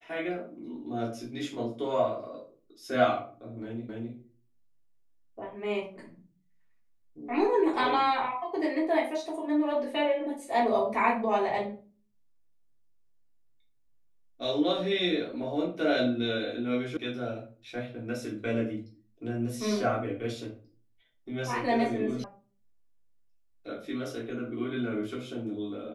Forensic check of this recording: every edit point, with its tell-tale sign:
3.89 s: repeat of the last 0.26 s
16.97 s: sound stops dead
22.24 s: sound stops dead

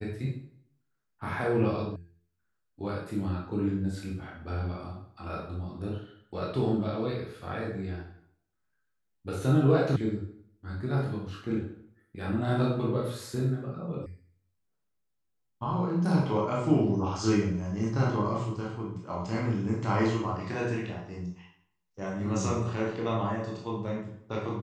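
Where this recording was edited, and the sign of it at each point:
1.96 s: sound stops dead
9.96 s: sound stops dead
14.06 s: sound stops dead

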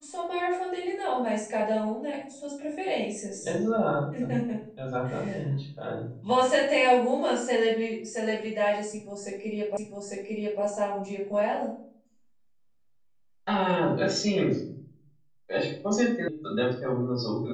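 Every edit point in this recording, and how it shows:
9.77 s: repeat of the last 0.85 s
16.28 s: sound stops dead

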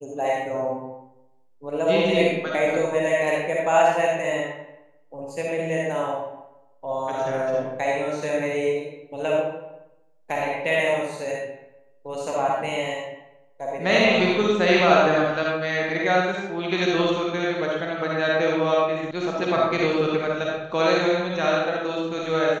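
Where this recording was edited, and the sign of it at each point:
19.11 s: sound stops dead

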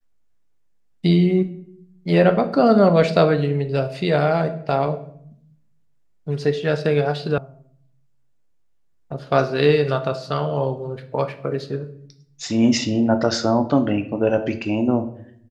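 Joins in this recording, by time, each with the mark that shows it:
7.38 s: sound stops dead

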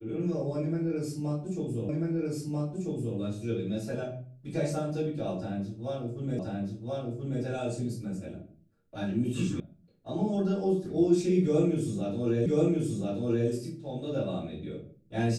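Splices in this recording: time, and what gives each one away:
1.89 s: repeat of the last 1.29 s
6.39 s: repeat of the last 1.03 s
9.60 s: sound stops dead
12.46 s: repeat of the last 1.03 s

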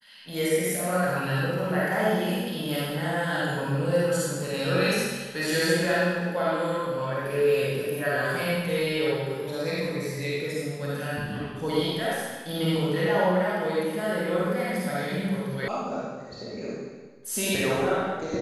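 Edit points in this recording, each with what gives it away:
15.68 s: sound stops dead

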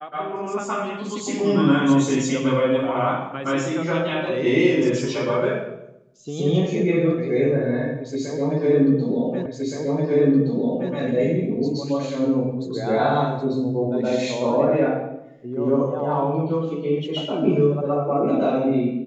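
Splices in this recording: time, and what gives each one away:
9.46 s: repeat of the last 1.47 s

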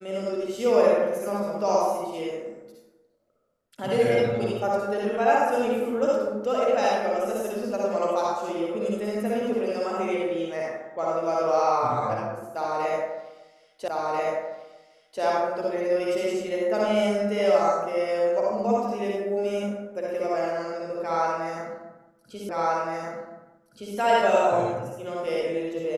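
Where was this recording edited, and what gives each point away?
13.88 s: repeat of the last 1.34 s
22.49 s: repeat of the last 1.47 s

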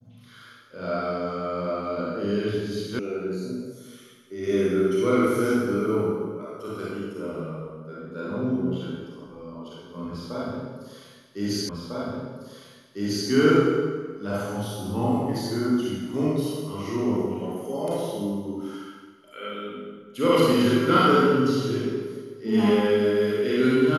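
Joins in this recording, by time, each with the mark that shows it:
2.99 s: sound stops dead
11.69 s: repeat of the last 1.6 s

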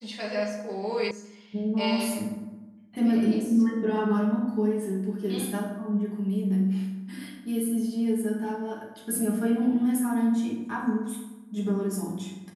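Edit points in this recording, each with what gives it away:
1.11 s: sound stops dead

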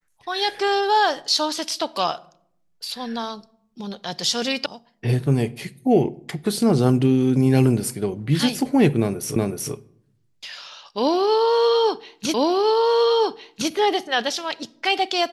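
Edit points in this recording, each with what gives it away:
4.66 s: sound stops dead
9.36 s: repeat of the last 0.37 s
12.34 s: repeat of the last 1.36 s

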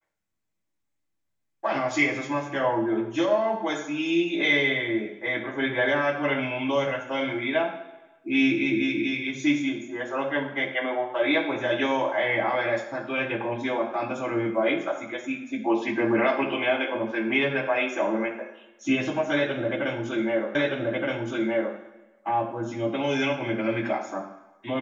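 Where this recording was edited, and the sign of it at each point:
20.55 s: repeat of the last 1.22 s

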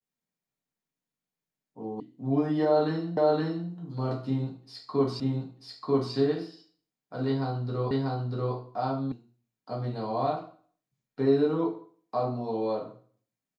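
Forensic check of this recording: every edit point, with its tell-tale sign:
2.00 s: sound stops dead
3.17 s: repeat of the last 0.52 s
5.20 s: repeat of the last 0.94 s
7.91 s: repeat of the last 0.64 s
9.12 s: sound stops dead

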